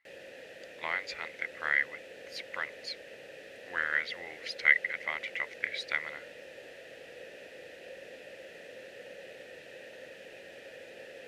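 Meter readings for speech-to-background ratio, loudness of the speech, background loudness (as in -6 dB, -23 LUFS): 16.0 dB, -32.0 LUFS, -48.0 LUFS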